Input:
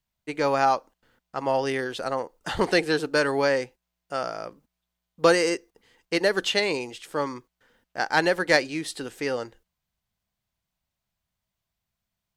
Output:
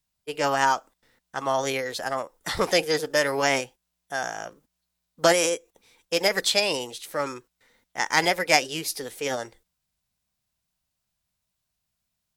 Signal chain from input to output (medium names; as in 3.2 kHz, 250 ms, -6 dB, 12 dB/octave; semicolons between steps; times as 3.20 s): treble shelf 3.4 kHz +8.5 dB; formant shift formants +3 st; trim -1 dB